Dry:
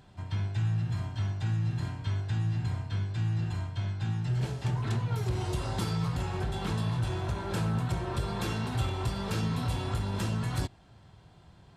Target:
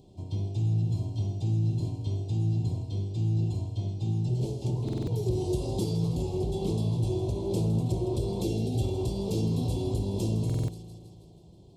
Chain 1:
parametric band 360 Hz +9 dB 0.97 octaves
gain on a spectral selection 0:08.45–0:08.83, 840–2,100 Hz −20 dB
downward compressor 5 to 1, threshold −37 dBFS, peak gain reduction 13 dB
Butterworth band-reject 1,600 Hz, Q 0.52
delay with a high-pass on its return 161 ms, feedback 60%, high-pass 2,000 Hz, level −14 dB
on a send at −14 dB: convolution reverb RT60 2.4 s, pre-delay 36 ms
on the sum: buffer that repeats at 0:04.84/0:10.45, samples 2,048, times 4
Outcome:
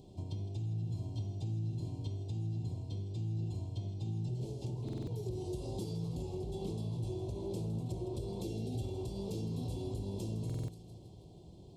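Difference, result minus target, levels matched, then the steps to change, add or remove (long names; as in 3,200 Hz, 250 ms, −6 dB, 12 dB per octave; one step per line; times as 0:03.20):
downward compressor: peak gain reduction +13 dB
remove: downward compressor 5 to 1, threshold −37 dBFS, peak gain reduction 13 dB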